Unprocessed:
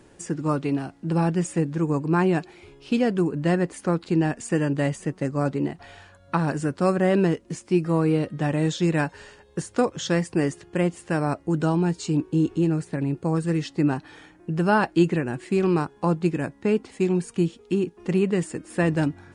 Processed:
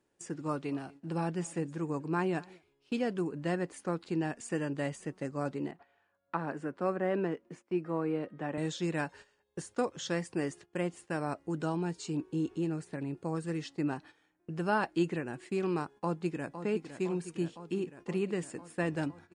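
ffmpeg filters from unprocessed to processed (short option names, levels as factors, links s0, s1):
-filter_complex "[0:a]asplit=3[s0][s1][s2];[s0]afade=t=out:st=0.61:d=0.02[s3];[s1]aecho=1:1:236:0.0708,afade=t=in:st=0.61:d=0.02,afade=t=out:st=3.13:d=0.02[s4];[s2]afade=t=in:st=3.13:d=0.02[s5];[s3][s4][s5]amix=inputs=3:normalize=0,asettb=1/sr,asplit=3[s6][s7][s8];[s6]atrim=end=5.714[s9];[s7]atrim=start=5.71:end=8.58,asetpts=PTS-STARTPTS,afade=t=in:d=0.004:c=qsin,afade=t=out:st=2.866:d=0.004:c=qsin,acrossover=split=160 2600:gain=0.251 1 0.178[s10][s11][s12];[s10][s11][s12]amix=inputs=3:normalize=0[s13];[s8]atrim=start=8.576[s14];[s9][s13]acrossfade=d=0.004:c1=hsin:c2=qsin[s15];[s15][s14]acrossfade=d=0.004:c1=qsin:c2=hsin,asplit=2[s16][s17];[s17]afade=t=in:st=15.96:d=0.01,afade=t=out:st=16.59:d=0.01,aecho=0:1:510|1020|1530|2040|2550|3060|3570|4080|4590|5100|5610|6120:0.316228|0.237171|0.177878|0.133409|0.100056|0.0750423|0.0562817|0.0422113|0.0316585|0.0237439|0.0178079|0.0133559[s18];[s16][s18]amix=inputs=2:normalize=0,agate=range=0.2:threshold=0.01:ratio=16:detection=peak,lowshelf=f=160:g=-9,volume=0.376"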